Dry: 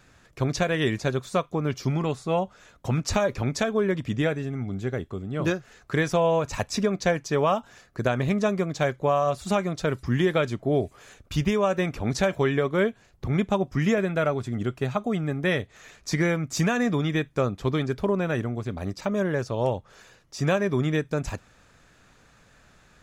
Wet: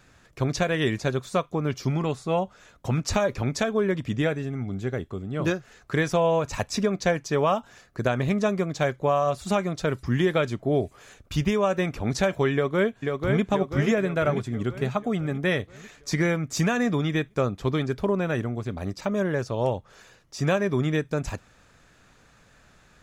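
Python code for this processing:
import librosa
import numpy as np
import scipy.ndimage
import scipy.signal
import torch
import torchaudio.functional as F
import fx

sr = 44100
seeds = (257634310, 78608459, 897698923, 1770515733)

y = fx.echo_throw(x, sr, start_s=12.53, length_s=0.89, ms=490, feedback_pct=55, wet_db=-3.5)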